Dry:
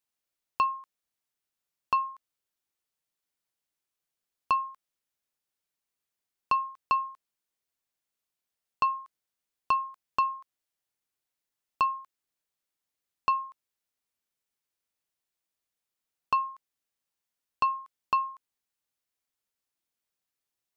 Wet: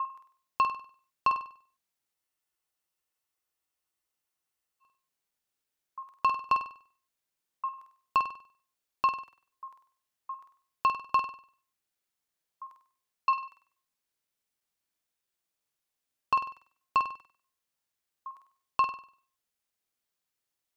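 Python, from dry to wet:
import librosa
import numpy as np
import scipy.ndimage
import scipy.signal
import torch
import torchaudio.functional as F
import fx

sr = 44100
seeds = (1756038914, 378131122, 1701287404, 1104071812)

y = fx.block_reorder(x, sr, ms=332.0, group=3)
y = fx.room_flutter(y, sr, wall_m=8.4, rt60_s=0.47)
y = fx.spec_freeze(y, sr, seeds[0], at_s=2.15, hold_s=2.67)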